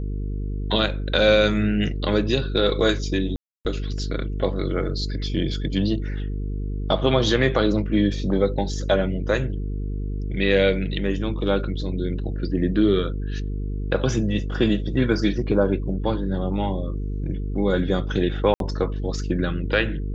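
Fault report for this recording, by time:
mains buzz 50 Hz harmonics 9 −27 dBFS
0:03.36–0:03.65: drop-out 289 ms
0:18.54–0:18.60: drop-out 62 ms

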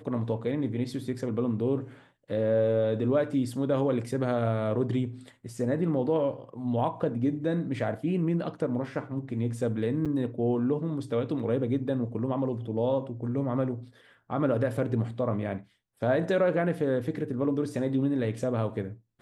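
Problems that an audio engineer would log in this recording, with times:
0:10.05–0:10.06: drop-out 6.6 ms

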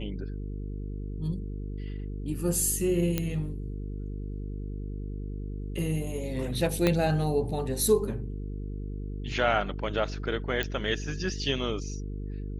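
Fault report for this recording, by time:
mains buzz 50 Hz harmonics 9 −35 dBFS
0:03.18: click −12 dBFS
0:06.87: click −10 dBFS
0:10.63: click −15 dBFS

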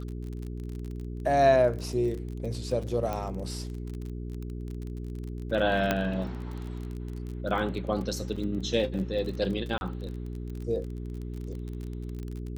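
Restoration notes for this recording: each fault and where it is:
surface crackle 36 per second −35 dBFS
mains hum 60 Hz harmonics 7 −36 dBFS
0:03.13: click −19 dBFS
0:05.91: click −10 dBFS
0:08.36: drop-out 4.9 ms
0:09.78–0:09.81: drop-out 31 ms

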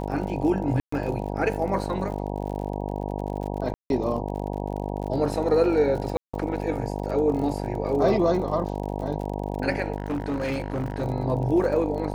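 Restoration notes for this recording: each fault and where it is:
mains buzz 50 Hz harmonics 19 −30 dBFS
surface crackle 48 per second −34 dBFS
0:00.80–0:00.92: drop-out 124 ms
0:03.74–0:03.90: drop-out 161 ms
0:06.17–0:06.33: drop-out 165 ms
0:09.96–0:11.03: clipping −23.5 dBFS

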